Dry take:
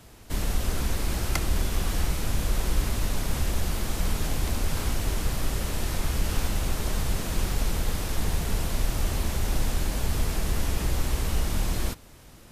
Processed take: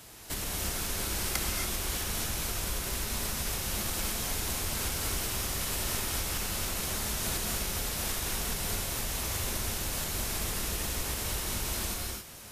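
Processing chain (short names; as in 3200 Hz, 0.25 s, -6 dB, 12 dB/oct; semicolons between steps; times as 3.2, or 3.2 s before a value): compressor 4:1, threshold -28 dBFS, peak gain reduction 9.5 dB; tilt +2 dB/oct; non-linear reverb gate 0.3 s rising, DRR -0.5 dB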